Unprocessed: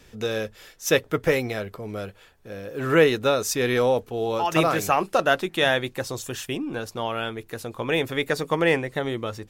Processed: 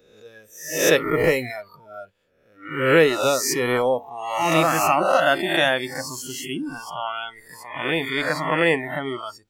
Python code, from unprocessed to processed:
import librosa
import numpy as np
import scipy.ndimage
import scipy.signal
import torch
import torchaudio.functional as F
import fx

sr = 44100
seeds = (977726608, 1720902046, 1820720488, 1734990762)

y = fx.spec_swells(x, sr, rise_s=1.06)
y = fx.noise_reduce_blind(y, sr, reduce_db=23)
y = fx.high_shelf(y, sr, hz=5300.0, db=-6.5, at=(6.61, 8.58))
y = fx.attack_slew(y, sr, db_per_s=170.0)